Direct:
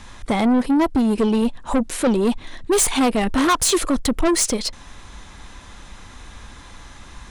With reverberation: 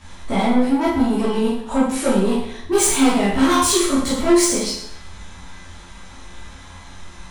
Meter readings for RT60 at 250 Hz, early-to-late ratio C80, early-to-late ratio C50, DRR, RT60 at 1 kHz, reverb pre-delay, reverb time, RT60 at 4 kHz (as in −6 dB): 0.70 s, 5.5 dB, 1.0 dB, −10.0 dB, 0.70 s, 11 ms, 0.70 s, 0.70 s